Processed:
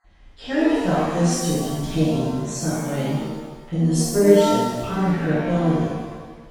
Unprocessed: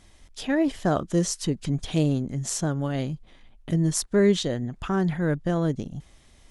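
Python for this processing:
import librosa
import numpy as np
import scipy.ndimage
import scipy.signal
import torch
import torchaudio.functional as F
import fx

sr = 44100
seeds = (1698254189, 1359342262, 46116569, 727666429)

y = fx.spec_dropout(x, sr, seeds[0], share_pct=22)
y = fx.env_lowpass(y, sr, base_hz=2700.0, full_db=-21.0)
y = fx.rev_shimmer(y, sr, seeds[1], rt60_s=1.3, semitones=7, shimmer_db=-8, drr_db=-10.0)
y = F.gain(torch.from_numpy(y), -6.5).numpy()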